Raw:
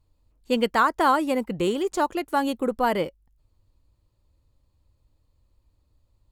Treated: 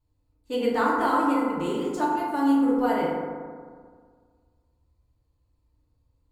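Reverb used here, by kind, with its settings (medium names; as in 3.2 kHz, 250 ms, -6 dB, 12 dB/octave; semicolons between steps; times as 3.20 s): FDN reverb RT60 1.8 s, low-frequency decay 1.1×, high-frequency decay 0.35×, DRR -7.5 dB; trim -11.5 dB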